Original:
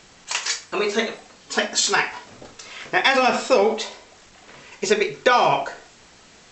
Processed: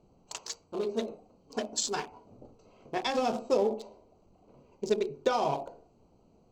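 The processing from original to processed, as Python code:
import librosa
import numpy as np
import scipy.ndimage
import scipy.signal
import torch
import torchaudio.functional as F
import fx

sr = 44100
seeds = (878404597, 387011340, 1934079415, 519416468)

y = fx.wiener(x, sr, points=25)
y = fx.peak_eq(y, sr, hz=1900.0, db=-14.0, octaves=1.6)
y = y * librosa.db_to_amplitude(-6.5)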